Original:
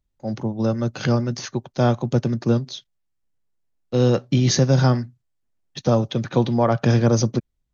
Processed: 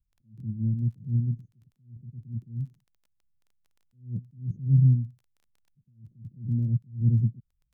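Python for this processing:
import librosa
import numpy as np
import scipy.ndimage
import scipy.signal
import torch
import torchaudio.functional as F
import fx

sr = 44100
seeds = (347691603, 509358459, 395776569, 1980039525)

y = scipy.signal.sosfilt(scipy.signal.cheby2(4, 80, [920.0, 5200.0], 'bandstop', fs=sr, output='sos'), x)
y = fx.dmg_crackle(y, sr, seeds[0], per_s=16.0, level_db=-49.0)
y = fx.attack_slew(y, sr, db_per_s=170.0)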